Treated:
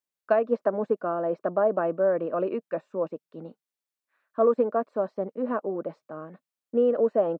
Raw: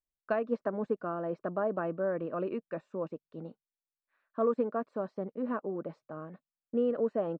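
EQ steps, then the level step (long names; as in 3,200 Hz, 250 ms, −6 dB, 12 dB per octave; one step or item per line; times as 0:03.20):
high-pass filter 170 Hz
dynamic equaliser 620 Hz, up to +6 dB, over −42 dBFS, Q 1.2
+3.5 dB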